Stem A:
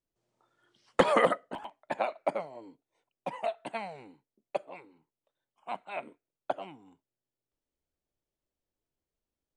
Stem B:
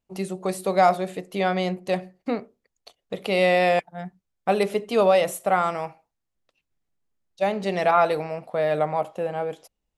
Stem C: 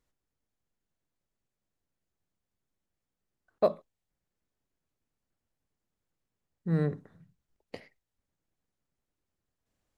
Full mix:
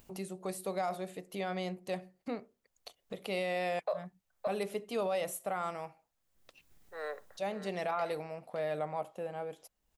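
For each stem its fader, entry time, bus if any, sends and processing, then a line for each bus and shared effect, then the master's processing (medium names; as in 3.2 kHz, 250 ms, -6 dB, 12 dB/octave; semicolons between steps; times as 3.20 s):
mute
-12.0 dB, 0.00 s, no send, no echo send, treble shelf 9.1 kHz +9 dB; upward compressor, threshold -27 dBFS
+1.5 dB, 0.25 s, no send, echo send -11 dB, Chebyshev high-pass 540 Hz, order 4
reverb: none
echo: delay 568 ms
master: peak limiter -25 dBFS, peak gain reduction 11.5 dB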